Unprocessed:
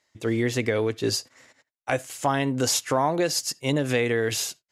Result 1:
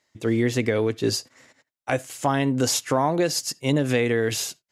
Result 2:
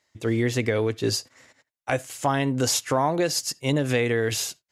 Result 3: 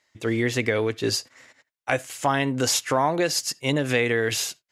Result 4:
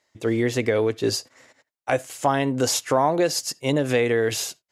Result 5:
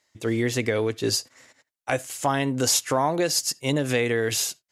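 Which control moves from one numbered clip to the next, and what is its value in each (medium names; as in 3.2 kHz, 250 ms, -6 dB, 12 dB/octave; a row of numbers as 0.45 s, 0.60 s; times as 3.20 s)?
peaking EQ, frequency: 200 Hz, 77 Hz, 2.1 kHz, 560 Hz, 11 kHz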